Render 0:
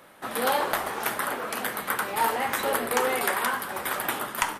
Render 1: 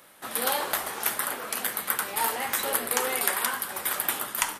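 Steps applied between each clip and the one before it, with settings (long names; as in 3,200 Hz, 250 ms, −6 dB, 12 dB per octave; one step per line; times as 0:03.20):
high-shelf EQ 3,100 Hz +12 dB
level −5.5 dB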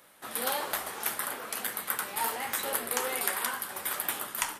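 flanger 1.2 Hz, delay 8.9 ms, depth 7.9 ms, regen −63%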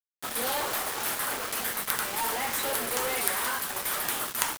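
log-companded quantiser 2 bits
level −2.5 dB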